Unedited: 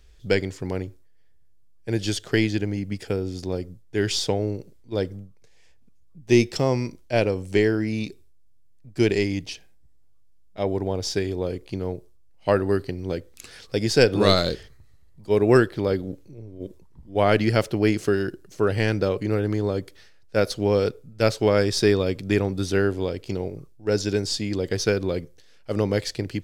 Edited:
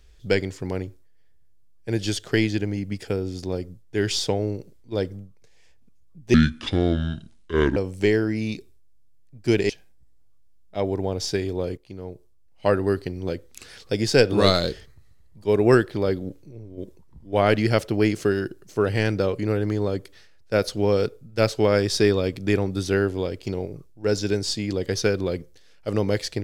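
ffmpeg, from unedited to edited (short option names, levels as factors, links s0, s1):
-filter_complex "[0:a]asplit=5[s0][s1][s2][s3][s4];[s0]atrim=end=6.344[s5];[s1]atrim=start=6.34:end=7.28,asetpts=PTS-STARTPTS,asetrate=29106,aresample=44100,atrim=end_sample=62809,asetpts=PTS-STARTPTS[s6];[s2]atrim=start=7.276:end=9.212[s7];[s3]atrim=start=9.518:end=11.6,asetpts=PTS-STARTPTS,afade=t=out:st=2.078:d=0.004:c=hsin:silence=0.223872[s8];[s4]atrim=start=11.6,asetpts=PTS-STARTPTS,afade=t=in:d=0.95:silence=0.223872[s9];[s5][s6]acrossfade=d=0.004:c1=hsin:c2=hsin[s10];[s10][s7]acrossfade=d=0.004:c1=hsin:c2=hsin[s11];[s8][s9]concat=n=2:v=0:a=1[s12];[s11][s12]acrossfade=d=0.004:c1=hsin:c2=hsin"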